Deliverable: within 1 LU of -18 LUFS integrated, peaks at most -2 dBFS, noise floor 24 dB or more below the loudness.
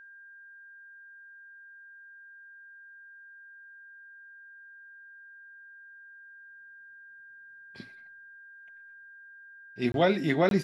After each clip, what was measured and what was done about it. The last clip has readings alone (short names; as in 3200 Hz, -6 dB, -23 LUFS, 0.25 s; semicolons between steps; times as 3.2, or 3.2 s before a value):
dropouts 2; longest dropout 22 ms; steady tone 1600 Hz; tone level -48 dBFS; loudness -26.5 LUFS; peak -11.0 dBFS; loudness target -18.0 LUFS
-> interpolate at 9.92/10.49, 22 ms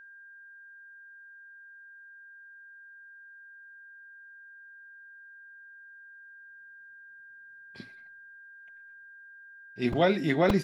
dropouts 0; steady tone 1600 Hz; tone level -48 dBFS
-> notch 1600 Hz, Q 30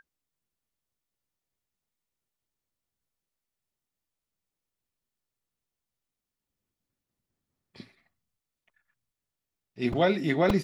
steady tone none; loudness -26.5 LUFS; peak -11.5 dBFS; loudness target -18.0 LUFS
-> gain +8.5 dB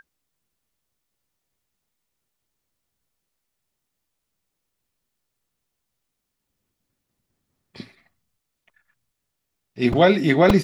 loudness -18.0 LUFS; peak -3.0 dBFS; noise floor -80 dBFS